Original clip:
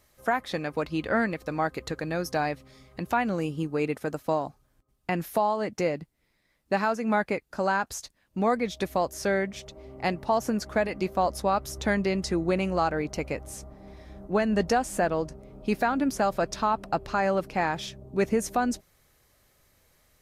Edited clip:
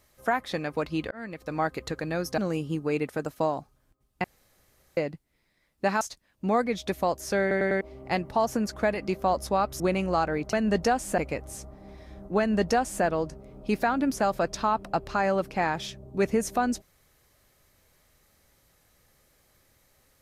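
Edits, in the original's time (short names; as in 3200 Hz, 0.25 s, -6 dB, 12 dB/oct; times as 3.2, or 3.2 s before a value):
1.11–1.59 fade in
2.38–3.26 cut
5.12–5.85 room tone
6.89–7.94 cut
9.34 stutter in place 0.10 s, 4 plays
11.73–12.44 cut
14.38–15.03 copy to 13.17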